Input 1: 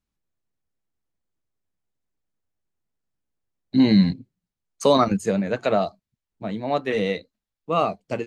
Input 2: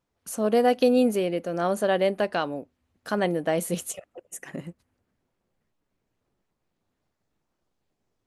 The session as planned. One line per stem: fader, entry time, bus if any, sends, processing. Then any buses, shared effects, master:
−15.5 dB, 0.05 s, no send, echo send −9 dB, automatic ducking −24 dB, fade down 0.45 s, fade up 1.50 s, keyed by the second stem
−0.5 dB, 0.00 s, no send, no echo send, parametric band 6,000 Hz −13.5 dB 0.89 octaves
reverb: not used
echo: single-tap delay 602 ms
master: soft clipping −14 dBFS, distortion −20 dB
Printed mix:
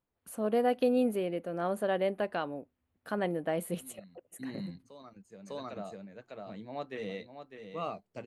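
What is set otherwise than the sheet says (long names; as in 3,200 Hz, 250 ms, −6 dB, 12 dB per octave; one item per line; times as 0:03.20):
stem 2 −0.5 dB → −7.0 dB
master: missing soft clipping −14 dBFS, distortion −20 dB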